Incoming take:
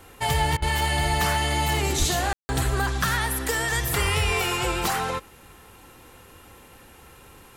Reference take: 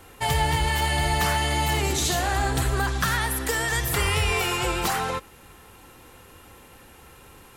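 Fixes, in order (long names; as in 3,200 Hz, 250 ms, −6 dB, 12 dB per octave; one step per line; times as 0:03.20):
0:01.98–0:02.10: high-pass filter 140 Hz 24 dB per octave
ambience match 0:02.33–0:02.49
repair the gap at 0:00.57, 50 ms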